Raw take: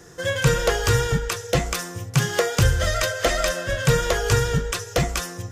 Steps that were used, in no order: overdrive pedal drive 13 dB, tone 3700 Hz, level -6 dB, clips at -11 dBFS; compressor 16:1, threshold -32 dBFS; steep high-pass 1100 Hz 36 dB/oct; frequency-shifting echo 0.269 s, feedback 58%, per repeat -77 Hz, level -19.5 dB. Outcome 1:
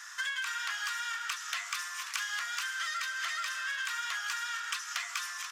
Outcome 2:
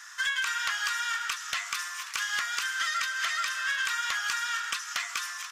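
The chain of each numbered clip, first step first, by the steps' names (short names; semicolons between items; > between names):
frequency-shifting echo > overdrive pedal > steep high-pass > compressor; frequency-shifting echo > steep high-pass > compressor > overdrive pedal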